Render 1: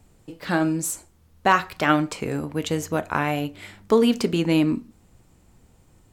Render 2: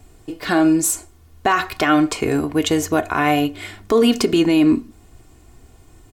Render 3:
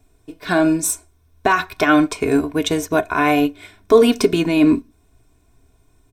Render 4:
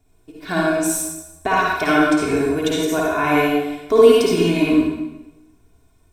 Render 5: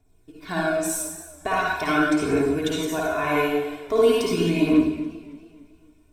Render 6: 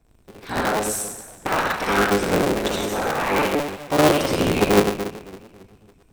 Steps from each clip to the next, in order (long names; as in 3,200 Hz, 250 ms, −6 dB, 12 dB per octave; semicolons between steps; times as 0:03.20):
comb filter 2.8 ms, depth 57%; brickwall limiter −14 dBFS, peak gain reduction 9.5 dB; level +7 dB
EQ curve with evenly spaced ripples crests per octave 1.6, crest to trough 8 dB; expander for the loud parts 1.5 to 1, over −37 dBFS; level +3 dB
convolution reverb RT60 1.0 s, pre-delay 47 ms, DRR −4.5 dB; level −6 dB
phase shifter 0.42 Hz, delay 2.3 ms, feedback 34%; feedback echo with a swinging delay time 277 ms, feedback 46%, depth 90 cents, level −19 dB; level −5.5 dB
sub-harmonics by changed cycles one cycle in 3, inverted; level +1.5 dB